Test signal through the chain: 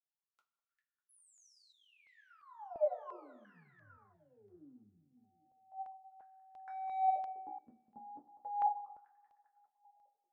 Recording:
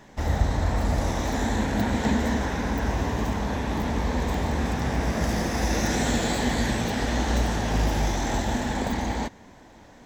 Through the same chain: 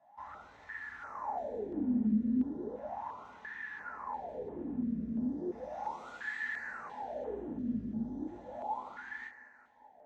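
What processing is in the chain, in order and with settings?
HPF 44 Hz; echo with dull and thin repeats by turns 0.199 s, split 1300 Hz, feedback 68%, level -12 dB; wavefolder -18 dBFS; wah 0.35 Hz 220–1800 Hz, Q 14; two-slope reverb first 0.2 s, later 1.5 s, from -18 dB, DRR -1.5 dB; stepped notch 2.9 Hz 420–4800 Hz

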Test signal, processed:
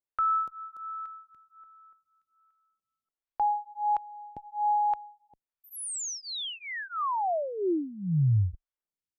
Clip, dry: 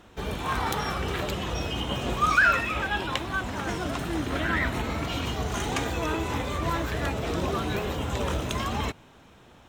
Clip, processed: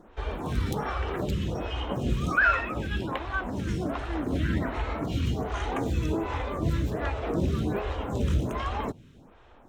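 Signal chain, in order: tilt -2 dB/oct; photocell phaser 1.3 Hz

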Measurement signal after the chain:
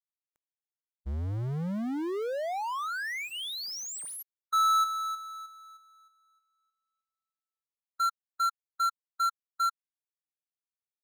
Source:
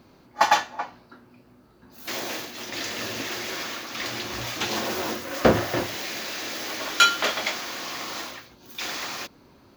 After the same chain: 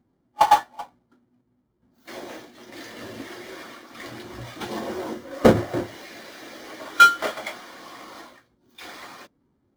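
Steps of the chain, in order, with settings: half-waves squared off; notch 2600 Hz, Q 12; spectral expander 1.5:1

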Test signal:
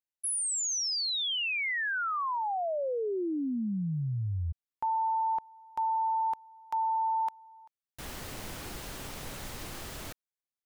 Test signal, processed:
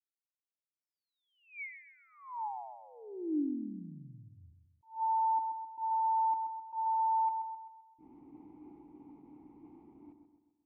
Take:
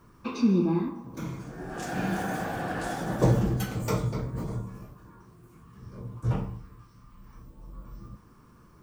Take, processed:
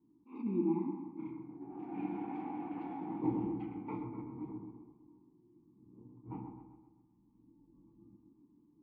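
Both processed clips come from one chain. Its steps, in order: treble ducked by the level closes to 2100 Hz, closed at -25 dBFS; vowel filter u; notches 50/100 Hz; low-pass opened by the level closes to 370 Hz, open at -34 dBFS; on a send: dark delay 0.13 s, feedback 48%, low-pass 2000 Hz, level -7 dB; on the sum: attack slew limiter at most 200 dB/s; gain +1.5 dB

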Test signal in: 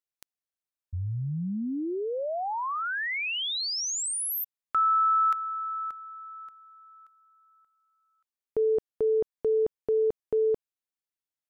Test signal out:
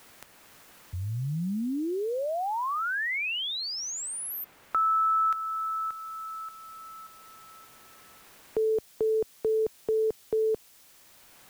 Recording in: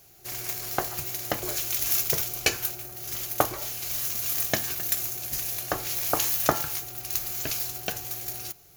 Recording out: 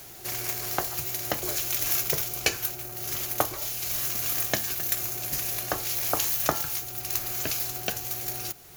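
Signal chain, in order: requantised 10-bit, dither triangular; three-band squash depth 40%

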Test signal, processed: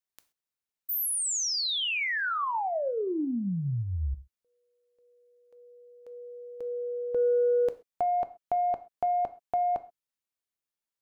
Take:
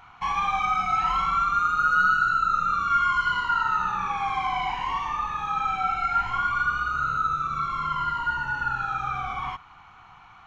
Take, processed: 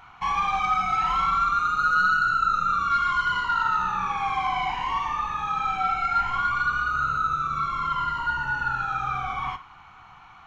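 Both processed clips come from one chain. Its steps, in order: soft clip -14.5 dBFS; non-linear reverb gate 0.15 s falling, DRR 11.5 dB; gain +1 dB

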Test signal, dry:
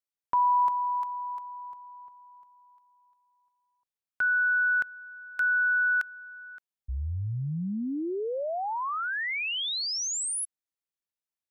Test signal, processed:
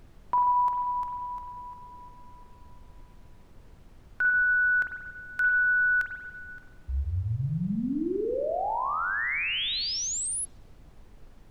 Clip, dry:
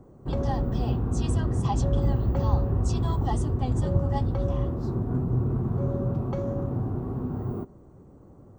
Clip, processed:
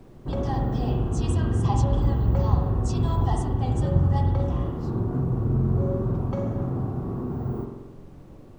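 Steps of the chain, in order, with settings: spring tank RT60 1.1 s, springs 45 ms, chirp 60 ms, DRR 2.5 dB; added noise brown -49 dBFS

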